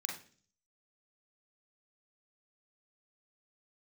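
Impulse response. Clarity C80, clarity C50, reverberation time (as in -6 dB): 11.5 dB, 6.0 dB, 0.45 s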